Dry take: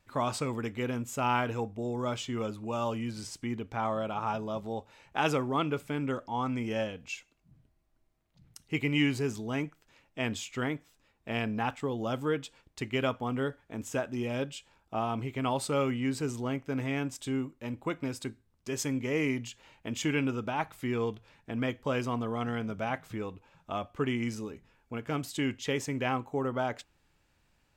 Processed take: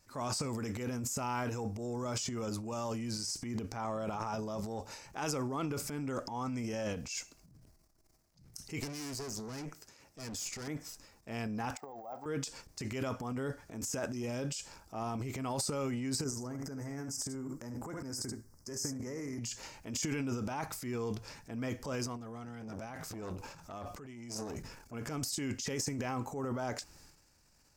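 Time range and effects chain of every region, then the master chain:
8.80–10.68 s: high-pass 53 Hz + peaking EQ 410 Hz +4 dB 0.32 oct + valve stage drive 40 dB, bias 0.55
11.77–12.26 s: block-companded coder 5-bit + band-pass filter 760 Hz, Q 6.3 + careless resampling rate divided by 2×, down none, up hold
16.24–19.39 s: high-order bell 3.1 kHz -15 dB 1 oct + compression 5:1, threshold -37 dBFS + delay 73 ms -10.5 dB
22.06–24.93 s: compressor with a negative ratio -38 dBFS, ratio -0.5 + transformer saturation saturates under 870 Hz
whole clip: resonant high shelf 4.2 kHz +7 dB, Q 3; compression 2:1, threshold -38 dBFS; transient shaper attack -6 dB, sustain +11 dB

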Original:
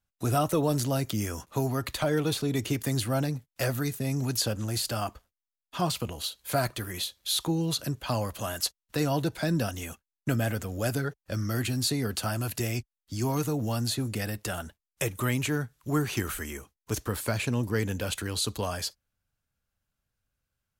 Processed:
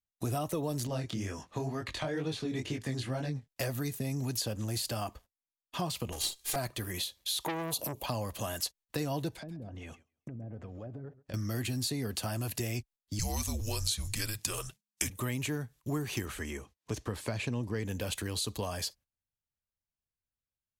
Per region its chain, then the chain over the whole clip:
0.87–3.48 s: low-pass 6.5 kHz + peaking EQ 1.7 kHz +4 dB 0.54 oct + chorus 2.1 Hz, delay 19 ms, depth 6.2 ms
6.12–6.56 s: comb filter that takes the minimum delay 2.5 ms + peaking EQ 7 kHz +11.5 dB 2.5 oct
7.45–8.06 s: FFT filter 130 Hz 0 dB, 220 Hz +5 dB, 930 Hz +13 dB, 1.6 kHz -14 dB, 2.3 kHz +1 dB, 5.3 kHz +2 dB, 8.1 kHz +6 dB, 13 kHz +14 dB + transformer saturation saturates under 1.8 kHz
9.34–11.34 s: low-pass that closes with the level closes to 420 Hz, closed at -23 dBFS + compression 5:1, threshold -41 dBFS + modulated delay 134 ms, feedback 35%, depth 97 cents, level -18 dB
13.19–15.10 s: frequency shift -210 Hz + peaking EQ 6.8 kHz +11.5 dB 2.6 oct
16.25–17.85 s: high-pass 44 Hz + upward compressor, threshold -46 dBFS + distance through air 53 m
whole clip: compression 3:1, threshold -32 dBFS; peaking EQ 1.4 kHz -7.5 dB 0.26 oct; gate -55 dBFS, range -15 dB

